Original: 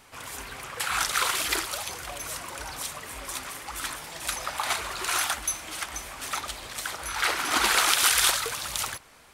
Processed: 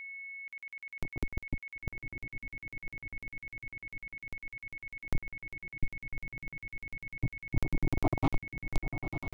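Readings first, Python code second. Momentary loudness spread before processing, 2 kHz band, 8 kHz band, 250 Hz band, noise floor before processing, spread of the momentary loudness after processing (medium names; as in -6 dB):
15 LU, -11.0 dB, -35.0 dB, +3.5 dB, -51 dBFS, 10 LU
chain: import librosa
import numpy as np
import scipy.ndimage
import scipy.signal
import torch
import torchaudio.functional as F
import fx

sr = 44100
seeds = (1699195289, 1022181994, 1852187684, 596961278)

p1 = fx.rider(x, sr, range_db=4, speed_s=2.0)
p2 = x + (p1 * 10.0 ** (0.0 / 20.0))
p3 = fx.comb_fb(p2, sr, f0_hz=99.0, decay_s=1.6, harmonics='odd', damping=0.0, mix_pct=70)
p4 = fx.schmitt(p3, sr, flips_db=-18.5)
p5 = fx.fixed_phaser(p4, sr, hz=320.0, stages=8)
p6 = fx.filter_sweep_lowpass(p5, sr, from_hz=250.0, to_hz=10000.0, start_s=7.75, end_s=8.81, q=0.87)
p7 = fx.echo_diffused(p6, sr, ms=1013, feedback_pct=60, wet_db=-10.0)
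p8 = p7 + 10.0 ** (-53.0 / 20.0) * np.sin(2.0 * np.pi * 2200.0 * np.arange(len(p7)) / sr)
p9 = fx.buffer_crackle(p8, sr, first_s=0.48, period_s=0.1, block=2048, kind='zero')
y = p9 * 10.0 ** (12.0 / 20.0)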